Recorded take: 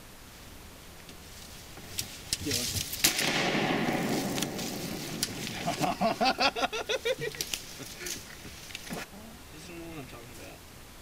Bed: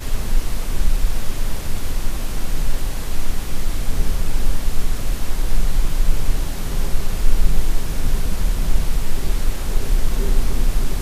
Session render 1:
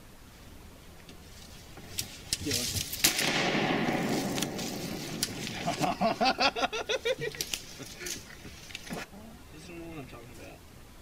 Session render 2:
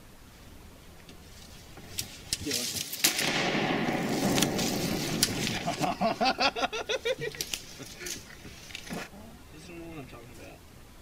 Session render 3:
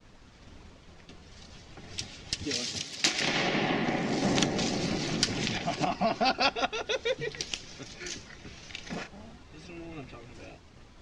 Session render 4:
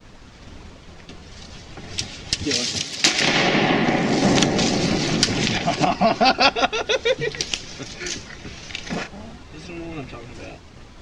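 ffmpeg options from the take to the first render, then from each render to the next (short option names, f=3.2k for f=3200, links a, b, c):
-af "afftdn=nr=6:nf=-49"
-filter_complex "[0:a]asettb=1/sr,asplit=3[a][b][c];[a]atrim=end=2.444[d];[b]atrim=start=2.44:end=3.14,asetpts=PTS-STARTPTS,afade=t=in:d=0.004:c=qsin,afade=t=out:st=0.696:d=0.004:c=qsin,highpass=170[e];[c]atrim=start=3.136[f];[d][e]acrossfade=d=0.004:c1=hsin:c2=qsin[g];[g][f]acrossfade=d=0.004:c1=qsin:c2=hsin,asettb=1/sr,asplit=3[h][i][j];[h]atrim=end=4.224[k];[i]atrim=start=4.22:end=5.58,asetpts=PTS-STARTPTS,afade=t=in:d=0.004:c=qsin,afade=t=out:st=1.356:d=0.004:c=qsin,acontrast=58[l];[j]atrim=start=5.576[m];[k][l]acrossfade=d=0.004:c1=hsin:c2=qsin[n];[n][m]acrossfade=d=0.004:c1=qsin:c2=hsin,asettb=1/sr,asplit=3[o][p][q];[o]atrim=end=8.474[r];[p]atrim=start=8.47:end=9.32,asetpts=PTS-STARTPTS,afade=t=in:d=0.004:c=qsin,afade=t=out:st=0.846:d=0.004:c=qsin,asplit=2[s][t];[t]adelay=34,volume=-7dB[u];[s][u]amix=inputs=2:normalize=0,atrim=end_sample=37485[v];[q]atrim=start=9.316[w];[r][v]acrossfade=d=0.004:c1=hsin:c2=qsin[x];[x][w]acrossfade=d=0.004:c1=qsin:c2=hsin"
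-af "lowpass=f=6.5k:w=0.5412,lowpass=f=6.5k:w=1.3066,agate=range=-33dB:threshold=-47dB:ratio=3:detection=peak"
-af "volume=10dB,alimiter=limit=-1dB:level=0:latency=1"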